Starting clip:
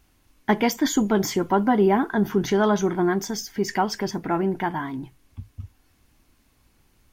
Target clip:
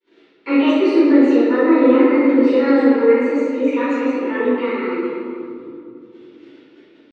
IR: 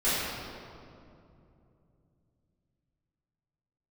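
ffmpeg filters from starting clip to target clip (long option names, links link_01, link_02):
-filter_complex "[0:a]asplit=2[link_01][link_02];[link_02]acompressor=mode=upward:threshold=-24dB:ratio=2.5,volume=3dB[link_03];[link_01][link_03]amix=inputs=2:normalize=0,highpass=frequency=220:width=0.5412,highpass=frequency=220:width=1.3066,equalizer=frequency=230:width_type=q:width=4:gain=9,equalizer=frequency=570:width_type=q:width=4:gain=-7,equalizer=frequency=860:width_type=q:width=4:gain=-9,lowpass=frequency=2900:width=0.5412,lowpass=frequency=2900:width=1.3066,agate=range=-51dB:threshold=-42dB:ratio=16:detection=peak,asetrate=57191,aresample=44100,atempo=0.771105[link_04];[1:a]atrim=start_sample=2205[link_05];[link_04][link_05]afir=irnorm=-1:irlink=0,volume=-15.5dB"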